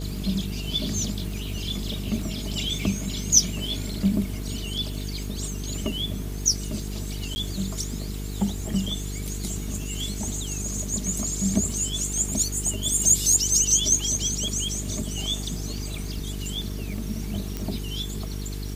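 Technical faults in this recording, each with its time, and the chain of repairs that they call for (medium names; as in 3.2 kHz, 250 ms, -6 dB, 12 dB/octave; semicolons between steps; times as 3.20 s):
buzz 50 Hz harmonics 9 -32 dBFS
crackle 32 per s -35 dBFS
7.35–7.36 s: dropout 10 ms
17.57 s: pop -15 dBFS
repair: de-click; de-hum 50 Hz, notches 9; interpolate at 7.35 s, 10 ms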